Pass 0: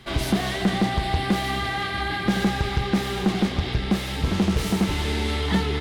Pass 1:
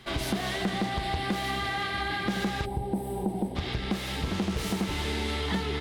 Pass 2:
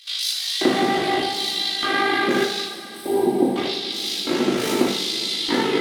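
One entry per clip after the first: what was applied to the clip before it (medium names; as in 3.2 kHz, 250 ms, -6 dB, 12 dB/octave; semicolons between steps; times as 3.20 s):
time-frequency box 2.65–3.56 s, 1–7.7 kHz -21 dB; bass shelf 200 Hz -4 dB; compression 2.5:1, threshold -25 dBFS, peak gain reduction 5 dB; trim -2 dB
AM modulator 52 Hz, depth 75%; LFO high-pass square 0.82 Hz 320–4200 Hz; two-slope reverb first 0.6 s, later 4.9 s, from -18 dB, DRR -3.5 dB; trim +8 dB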